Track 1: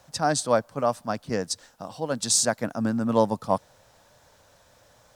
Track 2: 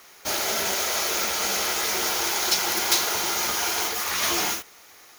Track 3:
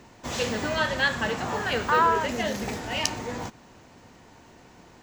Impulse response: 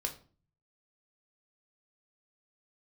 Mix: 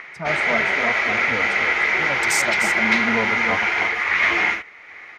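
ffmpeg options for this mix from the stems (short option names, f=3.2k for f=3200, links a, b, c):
-filter_complex "[0:a]afwtdn=0.0355,asplit=2[a][b];[b]adelay=2.9,afreqshift=0.42[c];[a][c]amix=inputs=2:normalize=1,volume=0dB,asplit=2[d][e];[e]volume=-8dB[f];[1:a]acompressor=mode=upward:threshold=-40dB:ratio=2.5,lowpass=f=2.1k:t=q:w=6.2,volume=1.5dB[g];[f]aecho=0:1:301:1[h];[d][g][h]amix=inputs=3:normalize=0"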